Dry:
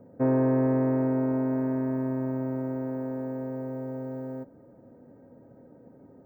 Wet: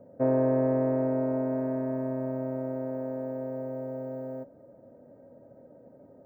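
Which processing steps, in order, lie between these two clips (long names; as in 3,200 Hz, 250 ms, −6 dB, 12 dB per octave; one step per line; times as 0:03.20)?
parametric band 600 Hz +13 dB 0.37 octaves
level −4 dB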